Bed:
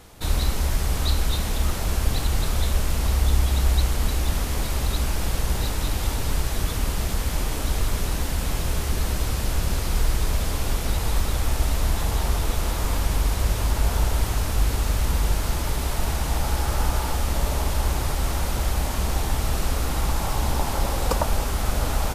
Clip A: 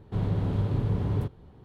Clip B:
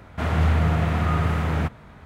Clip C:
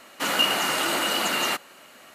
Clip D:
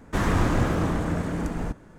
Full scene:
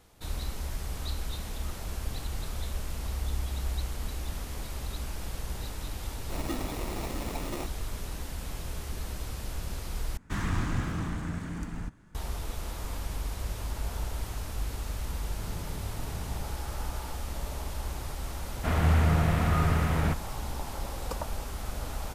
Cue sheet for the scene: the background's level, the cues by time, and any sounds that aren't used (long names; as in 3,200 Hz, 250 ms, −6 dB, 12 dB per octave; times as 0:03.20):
bed −12 dB
0:06.10: mix in C −13 dB + decimation without filtering 28×
0:10.17: overwrite with D −5.5 dB + parametric band 520 Hz −12.5 dB 1.4 octaves
0:15.25: mix in A −14.5 dB
0:18.46: mix in B −3.5 dB